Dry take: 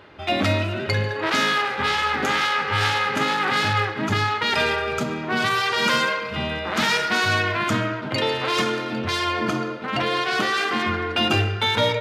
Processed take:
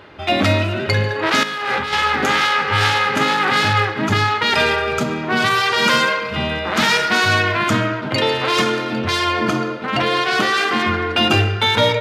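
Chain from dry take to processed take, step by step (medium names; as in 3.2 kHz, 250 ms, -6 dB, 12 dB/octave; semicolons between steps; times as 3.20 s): 1.43–1.93 s: compressor with a negative ratio -28 dBFS, ratio -1; trim +5 dB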